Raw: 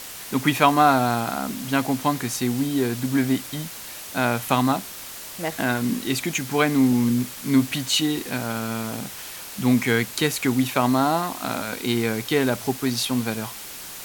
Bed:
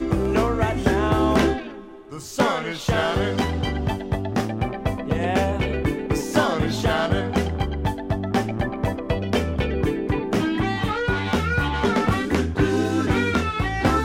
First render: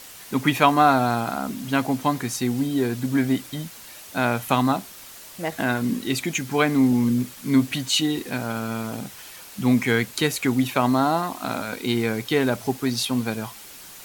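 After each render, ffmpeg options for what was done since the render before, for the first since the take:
-af "afftdn=nr=6:nf=-37"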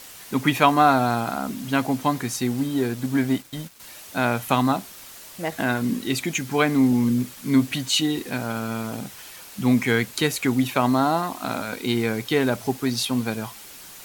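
-filter_complex "[0:a]asettb=1/sr,asplit=3[s0][s1][s2];[s0]atrim=end=2.474[s3];[s1]atrim=start=2.47:end=3.8,asetpts=PTS-STARTPTS,afade=t=in:d=0.004:c=qsin,afade=t=out:st=1.326:d=0.004:c=qsin,aeval=exprs='sgn(val(0))*max(abs(val(0))-0.00794,0)':c=same[s4];[s2]atrim=start=3.796[s5];[s3][s4]acrossfade=d=0.004:c1=hsin:c2=qsin[s6];[s6][s5]acrossfade=d=0.004:c1=qsin:c2=hsin"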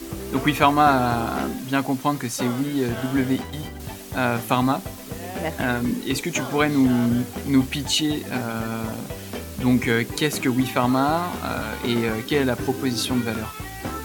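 -filter_complex "[1:a]volume=0.282[s0];[0:a][s0]amix=inputs=2:normalize=0"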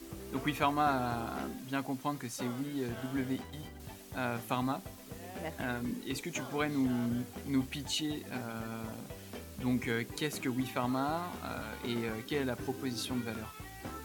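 -af "volume=0.224"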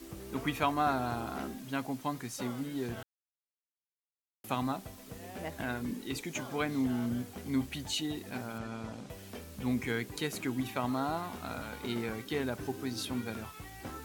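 -filter_complex "[0:a]asettb=1/sr,asplit=3[s0][s1][s2];[s0]atrim=end=8.584[s3];[s1]atrim=start=8.58:end=9.1,asetpts=PTS-STARTPTS,afade=t=in:d=0.004:c=qsin,afade=t=out:st=0.516:d=0.004:c=qsin,lowpass=6700[s4];[s2]atrim=start=9.096[s5];[s3][s4]acrossfade=d=0.004:c1=hsin:c2=qsin[s6];[s6][s5]acrossfade=d=0.004:c1=qsin:c2=hsin,asplit=3[s7][s8][s9];[s7]atrim=end=3.03,asetpts=PTS-STARTPTS,afade=t=out:st=3.026:d=0.004:c=hsin[s10];[s8]atrim=start=3.03:end=4.44,asetpts=PTS-STARTPTS,volume=0[s11];[s9]atrim=start=4.44,asetpts=PTS-STARTPTS,afade=t=in:d=0.004:c=hsin[s12];[s10][s11][s12]concat=n=3:v=0:a=1"

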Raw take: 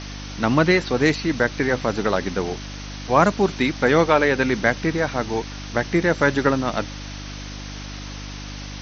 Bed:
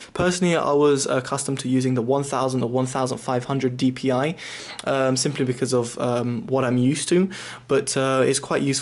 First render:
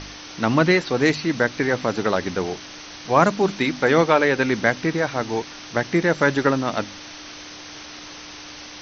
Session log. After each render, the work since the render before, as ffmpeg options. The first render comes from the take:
-af "bandreject=f=50:t=h:w=4,bandreject=f=100:t=h:w=4,bandreject=f=150:t=h:w=4,bandreject=f=200:t=h:w=4,bandreject=f=250:t=h:w=4"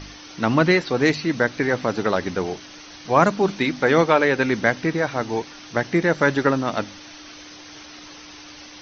-af "afftdn=nr=6:nf=-39"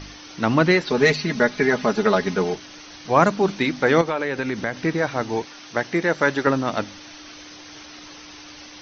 -filter_complex "[0:a]asettb=1/sr,asplit=3[s0][s1][s2];[s0]atrim=end=0.874[s3];[s1]atrim=start=0.87:end=2.55,asetpts=PTS-STARTPTS,afade=t=in:d=0.004:c=qsin,afade=t=out:st=1.676:d=0.004:c=qsin,aecho=1:1:4.8:0.86,atrim=end_sample=74088[s4];[s2]atrim=start=2.546[s5];[s3][s4]acrossfade=d=0.004:c1=hsin:c2=qsin[s6];[s6][s5]acrossfade=d=0.004:c1=qsin:c2=hsin,asettb=1/sr,asplit=3[s7][s8][s9];[s7]atrim=end=4.014[s10];[s8]atrim=start=4.01:end=4.77,asetpts=PTS-STARTPTS,afade=t=in:d=0.004:c=qsin,afade=t=out:st=0.756:d=0.004:c=qsin,acompressor=threshold=0.0794:ratio=3:attack=3.2:release=140:knee=1:detection=peak[s11];[s9]atrim=start=4.766[s12];[s10][s11]acrossfade=d=0.004:c1=hsin:c2=qsin[s13];[s13][s12]acrossfade=d=0.004:c1=qsin:c2=hsin,asettb=1/sr,asplit=3[s14][s15][s16];[s14]atrim=end=5.454[s17];[s15]atrim=start=5.45:end=6.47,asetpts=PTS-STARTPTS,afade=t=in:d=0.004:c=qsin,afade=t=out:st=1.016:d=0.004:c=qsin,lowshelf=f=200:g=-9[s18];[s16]atrim=start=6.466[s19];[s17][s18]acrossfade=d=0.004:c1=hsin:c2=qsin[s20];[s20][s19]acrossfade=d=0.004:c1=qsin:c2=hsin"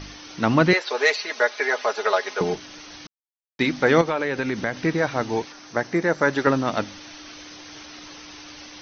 -filter_complex "[0:a]asettb=1/sr,asplit=3[s0][s1][s2];[s0]atrim=end=0.734[s3];[s1]atrim=start=0.73:end=2.41,asetpts=PTS-STARTPTS,afade=t=in:d=0.004:c=qsin,afade=t=out:st=1.676:d=0.004:c=qsin,highpass=f=490:w=0.5412,highpass=f=490:w=1.3066[s4];[s2]atrim=start=2.406[s5];[s3][s4]acrossfade=d=0.004:c1=hsin:c2=qsin[s6];[s6][s5]acrossfade=d=0.004:c1=qsin:c2=hsin,asettb=1/sr,asplit=3[s7][s8][s9];[s7]atrim=end=5.524[s10];[s8]atrim=start=5.52:end=6.33,asetpts=PTS-STARTPTS,afade=t=in:d=0.004:c=qsin,afade=t=out:st=0.806:d=0.004:c=qsin,equalizer=f=3100:t=o:w=1:g=-7.5[s11];[s9]atrim=start=6.326[s12];[s10][s11]acrossfade=d=0.004:c1=hsin:c2=qsin[s13];[s13][s12]acrossfade=d=0.004:c1=qsin:c2=hsin,asplit=3[s14][s15][s16];[s14]atrim=end=3.07,asetpts=PTS-STARTPTS,afade=t=out:st=3.066:d=0.004:c=hsin[s17];[s15]atrim=start=3.07:end=3.59,asetpts=PTS-STARTPTS,volume=0[s18];[s16]atrim=start=3.59,asetpts=PTS-STARTPTS,afade=t=in:d=0.004:c=hsin[s19];[s17][s18][s19]concat=n=3:v=0:a=1"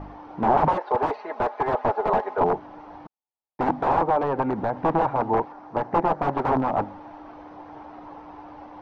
-af "aeval=exprs='(mod(6.68*val(0)+1,2)-1)/6.68':c=same,lowpass=f=860:t=q:w=3.8"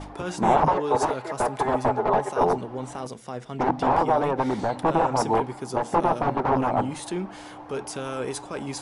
-filter_complex "[1:a]volume=0.266[s0];[0:a][s0]amix=inputs=2:normalize=0"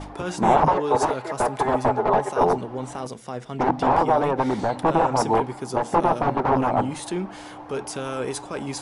-af "volume=1.26"

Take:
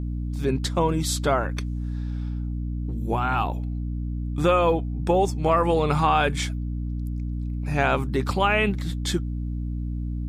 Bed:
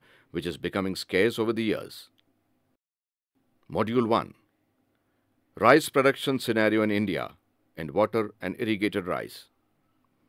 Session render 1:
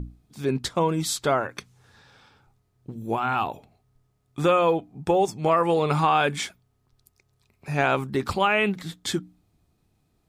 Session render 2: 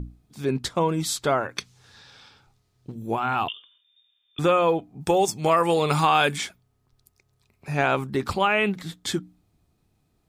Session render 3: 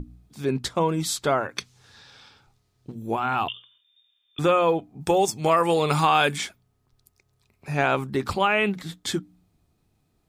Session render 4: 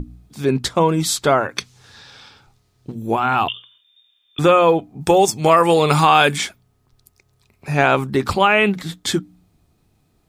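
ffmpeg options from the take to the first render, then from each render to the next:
-af "bandreject=f=60:t=h:w=6,bandreject=f=120:t=h:w=6,bandreject=f=180:t=h:w=6,bandreject=f=240:t=h:w=6,bandreject=f=300:t=h:w=6"
-filter_complex "[0:a]asettb=1/sr,asplit=3[s0][s1][s2];[s0]atrim=end=1.564[s3];[s1]atrim=start=1.56:end=2.92,asetpts=PTS-STARTPTS,afade=t=in:d=0.004:c=qsin,afade=t=out:st=1.356:d=0.004:c=qsin,equalizer=f=4500:w=0.64:g=9.5[s4];[s2]atrim=start=2.916[s5];[s3][s4]acrossfade=d=0.004:c1=hsin:c2=qsin[s6];[s6][s5]acrossfade=d=0.004:c1=qsin:c2=hsin,asettb=1/sr,asplit=3[s7][s8][s9];[s7]atrim=end=3.484[s10];[s8]atrim=start=3.48:end=4.39,asetpts=PTS-STARTPTS,afade=t=in:d=0.004:c=qsin,afade=t=out:st=0.906:d=0.004:c=qsin,lowpass=f=3100:t=q:w=0.5098,lowpass=f=3100:t=q:w=0.6013,lowpass=f=3100:t=q:w=0.9,lowpass=f=3100:t=q:w=2.563,afreqshift=-3700[s11];[s9]atrim=start=4.386[s12];[s10][s11]acrossfade=d=0.004:c1=hsin:c2=qsin[s13];[s13][s12]acrossfade=d=0.004:c1=qsin:c2=hsin,asplit=3[s14][s15][s16];[s14]afade=t=out:st=5:d=0.02[s17];[s15]highshelf=f=3400:g=11.5,afade=t=in:st=5:d=0.02,afade=t=out:st=6.36:d=0.02[s18];[s16]afade=t=in:st=6.36:d=0.02[s19];[s17][s18][s19]amix=inputs=3:normalize=0"
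-af "bandreject=f=60:t=h:w=6,bandreject=f=120:t=h:w=6,bandreject=f=180:t=h:w=6"
-af "volume=2.24,alimiter=limit=0.794:level=0:latency=1"

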